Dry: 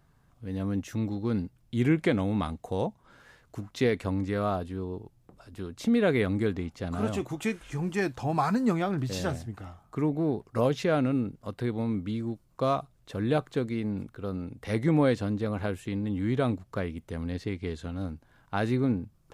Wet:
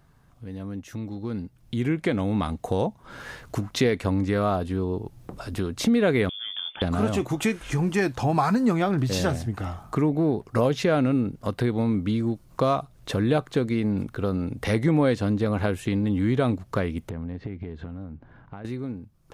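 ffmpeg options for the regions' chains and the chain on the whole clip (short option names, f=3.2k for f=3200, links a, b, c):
-filter_complex "[0:a]asettb=1/sr,asplit=3[a][b][c];[a]atrim=end=6.294[d];[b]atrim=start=6.29:end=6.82,asetpts=PTS-STARTPTS,afade=t=in:d=0.004:c=qsin,afade=t=out:st=0.526:d=0.004:c=qsin,highpass=62,acompressor=threshold=-44dB:ratio=4:attack=3.2:release=140:knee=1:detection=peak,lowpass=f=3.1k:t=q:w=0.5098,lowpass=f=3.1k:t=q:w=0.6013,lowpass=f=3.1k:t=q:w=0.9,lowpass=f=3.1k:t=q:w=2.563,afreqshift=-3600[e];[c]atrim=start=6.816[f];[d][e]acrossfade=d=0.004:c1=hsin:c2=qsin[g];[g][f]acrossfade=d=0.004:c1=qsin:c2=hsin,asettb=1/sr,asplit=3[h][i][j];[h]atrim=end=17.094[k];[i]atrim=start=17.09:end=18.65,asetpts=PTS-STARTPTS,afade=t=in:d=0.004:c=qsin,afade=t=out:st=1.556:d=0.004:c=qsin,lowpass=2.1k,equalizer=f=150:w=0.43:g=5.5,acompressor=threshold=-42dB:ratio=4:attack=3.2:release=140:knee=1:detection=peak[l];[j]atrim=start=18.646[m];[k][l]acrossfade=d=0.004:c1=hsin:c2=qsin[n];[n][m]acrossfade=d=0.004:c1=qsin:c2=hsin,acompressor=threshold=-45dB:ratio=2,bandreject=f=7.5k:w=25,dynaudnorm=f=220:g=17:m=11dB,volume=5dB"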